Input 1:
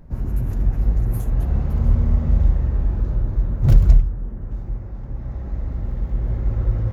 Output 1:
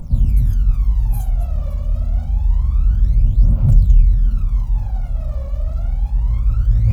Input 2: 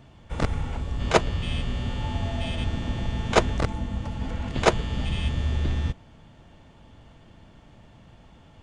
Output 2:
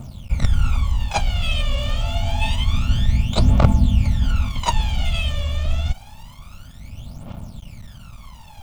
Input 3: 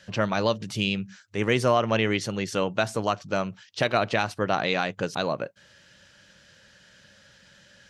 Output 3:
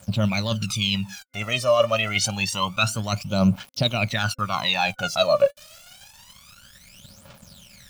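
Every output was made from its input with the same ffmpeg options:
ffmpeg -i in.wav -af "areverse,acompressor=threshold=-28dB:ratio=5,areverse,aeval=exprs='val(0)*gte(abs(val(0)),0.00266)':channel_layout=same,superequalizer=6b=0.398:7b=0.355:11b=0.398,aphaser=in_gain=1:out_gain=1:delay=1.8:decay=0.8:speed=0.27:type=triangular,adynamicequalizer=threshold=0.00708:dfrequency=1600:dqfactor=0.7:tfrequency=1600:tqfactor=0.7:attack=5:release=100:ratio=0.375:range=2:mode=boostabove:tftype=highshelf,volume=5.5dB" out.wav

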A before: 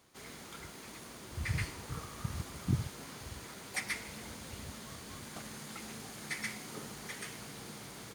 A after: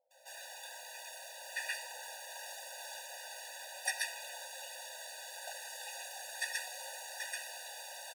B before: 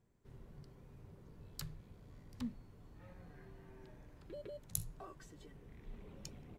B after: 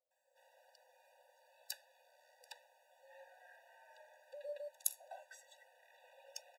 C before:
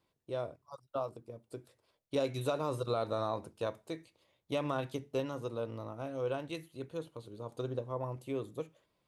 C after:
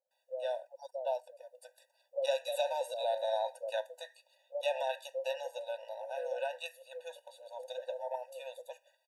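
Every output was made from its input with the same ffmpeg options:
ffmpeg -i in.wav -filter_complex "[0:a]acrossover=split=510[link_01][link_02];[link_02]adelay=110[link_03];[link_01][link_03]amix=inputs=2:normalize=0,afftfilt=real='re*eq(mod(floor(b*sr/1024/490),2),1)':imag='im*eq(mod(floor(b*sr/1024/490),2),1)':win_size=1024:overlap=0.75,volume=6dB" out.wav

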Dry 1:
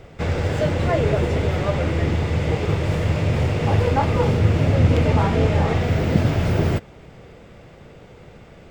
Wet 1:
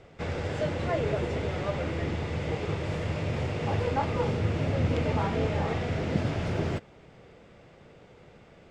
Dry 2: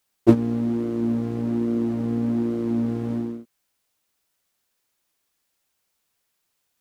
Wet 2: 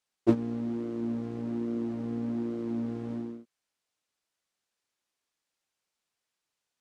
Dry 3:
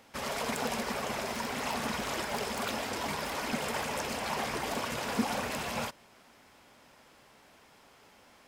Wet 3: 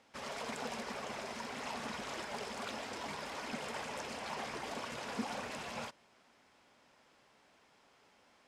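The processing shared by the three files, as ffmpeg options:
ffmpeg -i in.wav -af "lowpass=8200,lowshelf=frequency=110:gain=-7,volume=-7.5dB" out.wav

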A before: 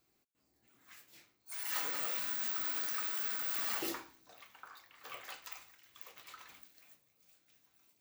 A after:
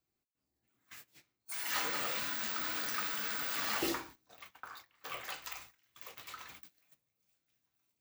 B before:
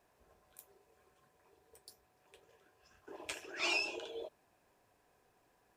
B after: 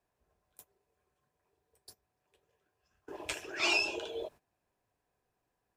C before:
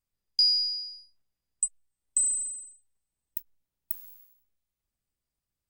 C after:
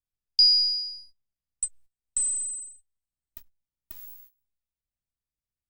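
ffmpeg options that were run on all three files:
ffmpeg -i in.wav -filter_complex "[0:a]acrossover=split=7100[link_01][link_02];[link_02]acompressor=threshold=-41dB:ratio=4:attack=1:release=60[link_03];[link_01][link_03]amix=inputs=2:normalize=0,agate=range=-16dB:threshold=-57dB:ratio=16:detection=peak,acrossover=split=180[link_04][link_05];[link_04]acontrast=35[link_06];[link_06][link_05]amix=inputs=2:normalize=0,volume=5dB" out.wav

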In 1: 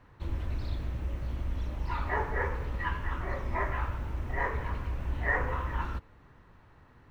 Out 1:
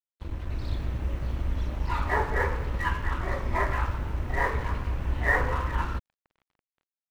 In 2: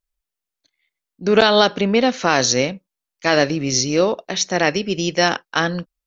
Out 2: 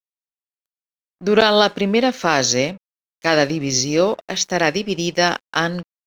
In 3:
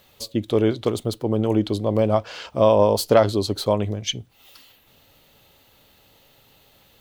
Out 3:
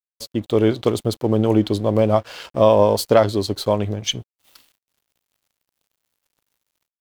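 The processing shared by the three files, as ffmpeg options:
ffmpeg -i in.wav -af "dynaudnorm=framelen=380:gausssize=3:maxgain=5.5dB,aeval=exprs='sgn(val(0))*max(abs(val(0))-0.00708,0)':channel_layout=same" out.wav

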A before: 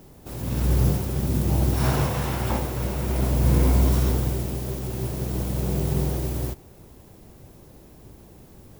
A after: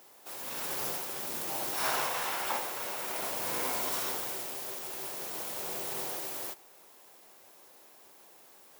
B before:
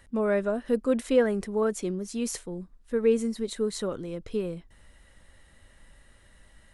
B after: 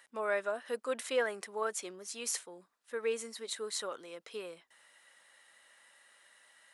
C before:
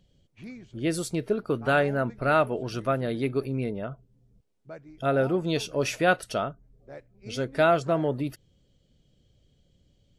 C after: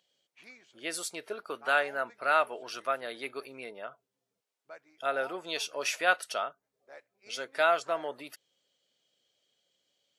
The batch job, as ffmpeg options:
ffmpeg -i in.wav -af "highpass=830" out.wav

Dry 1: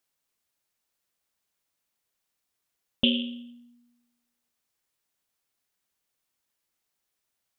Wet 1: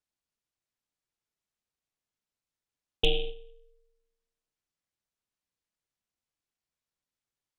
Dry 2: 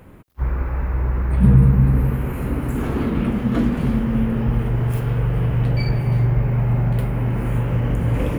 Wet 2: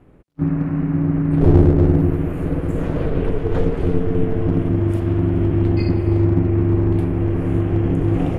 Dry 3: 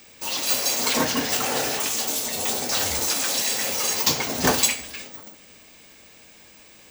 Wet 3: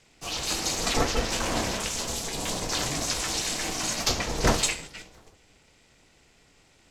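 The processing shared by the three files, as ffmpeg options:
ffmpeg -i in.wav -af "agate=range=-6dB:threshold=-35dB:ratio=16:detection=peak,aeval=exprs='val(0)*sin(2*PI*220*n/s)':channel_layout=same,lowpass=8500,lowshelf=frequency=280:gain=8.5,aeval=exprs='clip(val(0),-1,0.355)':channel_layout=same,volume=-1dB" out.wav

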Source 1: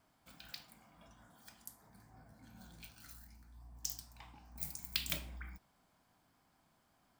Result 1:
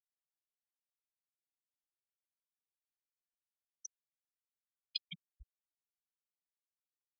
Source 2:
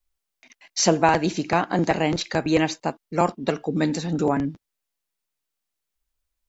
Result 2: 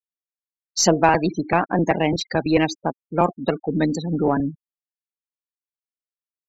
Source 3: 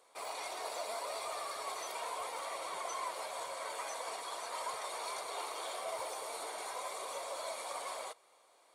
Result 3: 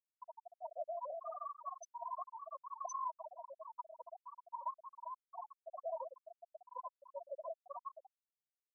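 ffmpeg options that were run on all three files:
ffmpeg -i in.wav -af "afftfilt=real='re*gte(hypot(re,im),0.0562)':imag='im*gte(hypot(re,im),0.0562)':win_size=1024:overlap=0.75,highshelf=frequency=8000:gain=2.5,aeval=exprs='0.631*(cos(1*acos(clip(val(0)/0.631,-1,1)))-cos(1*PI/2))+0.01*(cos(6*acos(clip(val(0)/0.631,-1,1)))-cos(6*PI/2))':channel_layout=same,volume=2dB" out.wav

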